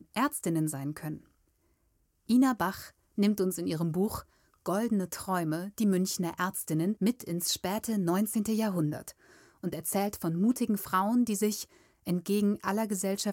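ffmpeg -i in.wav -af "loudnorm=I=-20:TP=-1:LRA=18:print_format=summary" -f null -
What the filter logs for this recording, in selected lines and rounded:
Input Integrated:    -30.2 LUFS
Input True Peak:     -14.6 dBTP
Input LRA:             1.5 LU
Input Threshold:     -40.6 LUFS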